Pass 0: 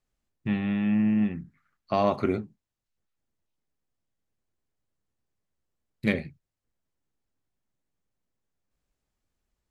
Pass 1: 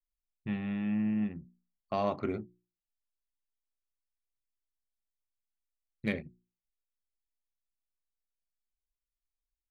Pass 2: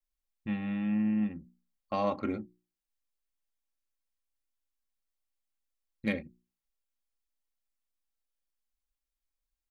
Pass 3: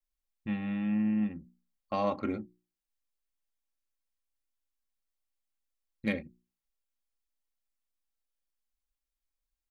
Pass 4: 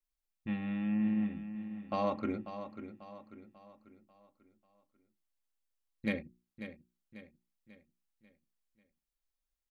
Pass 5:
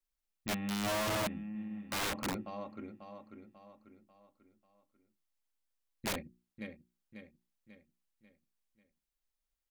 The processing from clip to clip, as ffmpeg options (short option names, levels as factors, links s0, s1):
-af "anlmdn=1,bandreject=f=60:t=h:w=6,bandreject=f=120:t=h:w=6,bandreject=f=180:t=h:w=6,bandreject=f=240:t=h:w=6,bandreject=f=300:t=h:w=6,bandreject=f=360:t=h:w=6,volume=0.447"
-af "aecho=1:1:3.7:0.54"
-af anull
-af "aecho=1:1:542|1084|1626|2168|2710:0.282|0.124|0.0546|0.024|0.0106,volume=0.75"
-af "aeval=exprs='(mod(29.9*val(0)+1,2)-1)/29.9':c=same"